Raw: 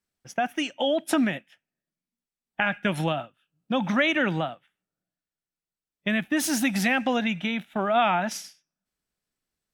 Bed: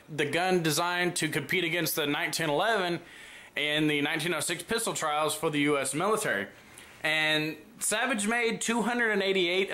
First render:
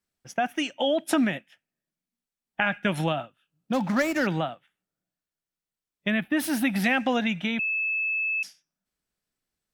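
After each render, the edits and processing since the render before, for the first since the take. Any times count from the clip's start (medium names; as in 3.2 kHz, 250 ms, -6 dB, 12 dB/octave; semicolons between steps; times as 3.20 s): 3.73–4.27 s: median filter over 15 samples; 6.10–6.84 s: peaking EQ 6.6 kHz -13.5 dB; 7.59–8.43 s: bleep 2.61 kHz -24 dBFS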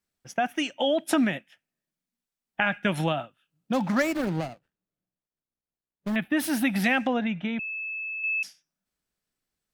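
4.13–6.16 s: median filter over 41 samples; 7.07–8.24 s: tape spacing loss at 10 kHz 25 dB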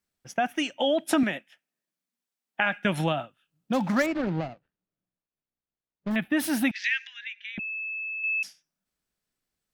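1.23–2.85 s: Bessel high-pass 250 Hz; 4.06–6.11 s: distance through air 170 m; 6.71–7.58 s: Chebyshev band-pass 1.7–6.5 kHz, order 4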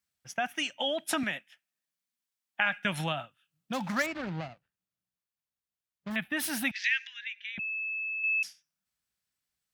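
high-pass 65 Hz; peaking EQ 350 Hz -11.5 dB 2.3 oct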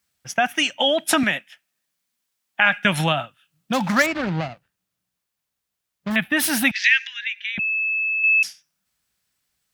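trim +11.5 dB; peak limiter -2 dBFS, peak gain reduction 3 dB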